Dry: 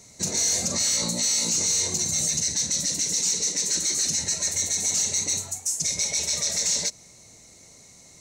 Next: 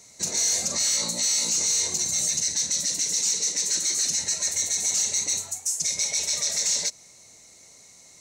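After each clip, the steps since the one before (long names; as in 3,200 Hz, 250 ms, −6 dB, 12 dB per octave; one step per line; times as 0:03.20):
low-shelf EQ 370 Hz −9.5 dB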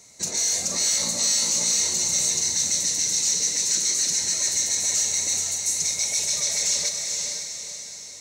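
feedback delay with all-pass diffusion 488 ms, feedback 46%, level −3.5 dB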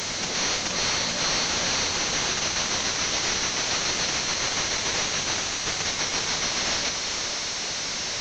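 linear delta modulator 32 kbit/s, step −21 dBFS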